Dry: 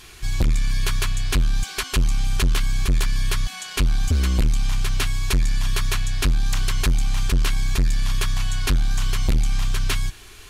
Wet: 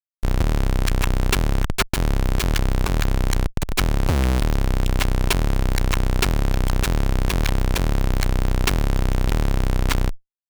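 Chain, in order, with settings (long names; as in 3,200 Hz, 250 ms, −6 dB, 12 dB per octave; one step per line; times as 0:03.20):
comparator with hysteresis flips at −25 dBFS
harmonic generator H 8 −10 dB, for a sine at −12.5 dBFS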